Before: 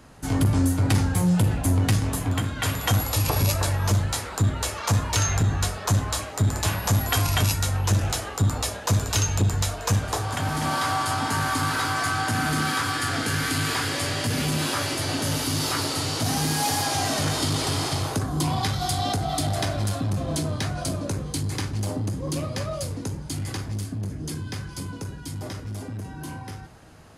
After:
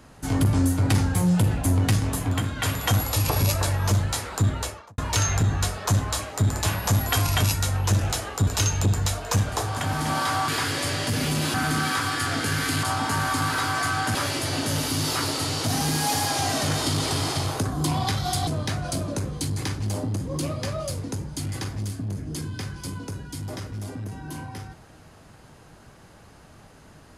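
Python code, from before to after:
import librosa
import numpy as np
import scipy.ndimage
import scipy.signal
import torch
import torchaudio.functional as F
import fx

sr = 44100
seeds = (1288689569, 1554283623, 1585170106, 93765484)

y = fx.studio_fade_out(x, sr, start_s=4.54, length_s=0.44)
y = fx.edit(y, sr, fx.cut(start_s=8.47, length_s=0.56),
    fx.swap(start_s=11.04, length_s=1.32, other_s=13.65, other_length_s=1.06),
    fx.cut(start_s=19.03, length_s=1.37), tone=tone)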